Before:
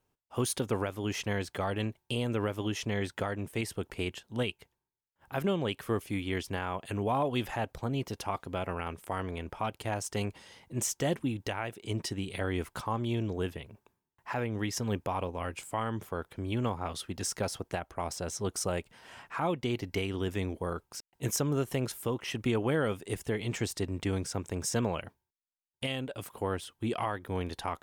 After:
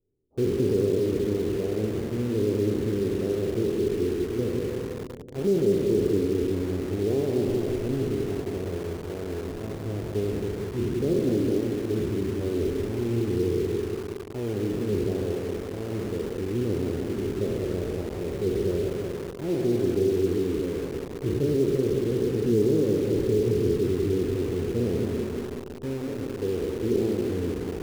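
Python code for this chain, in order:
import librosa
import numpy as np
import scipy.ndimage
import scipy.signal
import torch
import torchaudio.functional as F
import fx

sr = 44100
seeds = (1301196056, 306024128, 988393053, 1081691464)

p1 = fx.spec_trails(x, sr, decay_s=2.54)
p2 = fx.ladder_lowpass(p1, sr, hz=440.0, resonance_pct=65)
p3 = fx.tilt_eq(p2, sr, slope=-2.5)
p4 = p3 + fx.echo_feedback(p3, sr, ms=187, feedback_pct=59, wet_db=-5.5, dry=0)
p5 = fx.rev_schroeder(p4, sr, rt60_s=0.35, comb_ms=26, drr_db=10.0)
p6 = fx.quant_dither(p5, sr, seeds[0], bits=6, dither='none')
y = p5 + (p6 * librosa.db_to_amplitude(-5.0))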